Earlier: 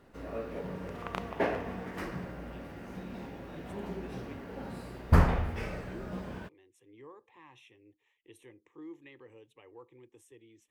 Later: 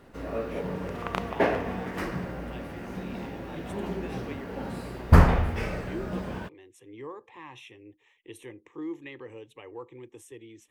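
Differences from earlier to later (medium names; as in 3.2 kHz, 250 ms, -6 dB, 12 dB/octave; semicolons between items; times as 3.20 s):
speech +10.5 dB; background +6.0 dB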